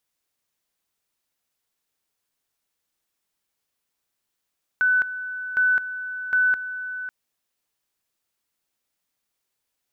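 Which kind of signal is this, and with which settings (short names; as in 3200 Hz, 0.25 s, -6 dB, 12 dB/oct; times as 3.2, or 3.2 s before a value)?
two-level tone 1500 Hz -16 dBFS, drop 12.5 dB, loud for 0.21 s, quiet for 0.55 s, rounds 3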